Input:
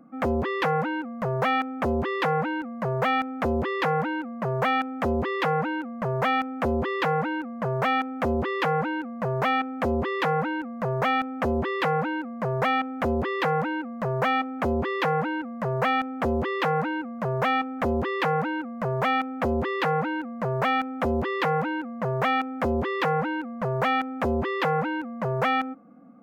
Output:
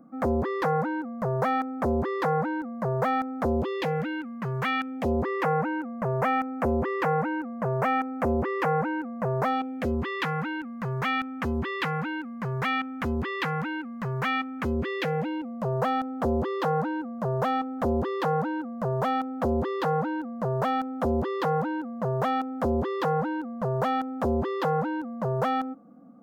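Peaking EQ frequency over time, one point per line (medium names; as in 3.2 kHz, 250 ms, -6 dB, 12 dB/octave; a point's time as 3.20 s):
peaking EQ -14 dB 0.96 oct
3.40 s 2.8 kHz
4.27 s 620 Hz
4.81 s 620 Hz
5.30 s 3.6 kHz
9.37 s 3.6 kHz
10.00 s 600 Hz
14.55 s 600 Hz
15.81 s 2.3 kHz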